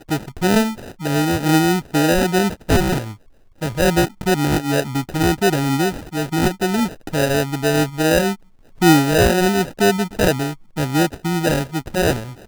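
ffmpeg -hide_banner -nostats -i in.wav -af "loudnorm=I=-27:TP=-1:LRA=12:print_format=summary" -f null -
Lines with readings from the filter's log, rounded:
Input Integrated:    -18.8 LUFS
Input True Peak:      -1.8 dBTP
Input LRA:             2.5 LU
Input Threshold:     -29.0 LUFS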